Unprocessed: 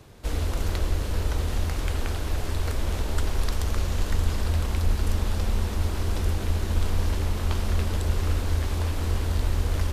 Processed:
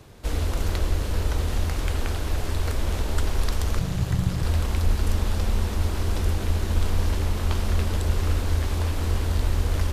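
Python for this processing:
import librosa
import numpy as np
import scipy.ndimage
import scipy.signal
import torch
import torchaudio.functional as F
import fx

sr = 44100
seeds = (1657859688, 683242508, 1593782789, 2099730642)

y = fx.ring_mod(x, sr, carrier_hz=100.0, at=(3.79, 4.43))
y = y * 10.0 ** (1.5 / 20.0)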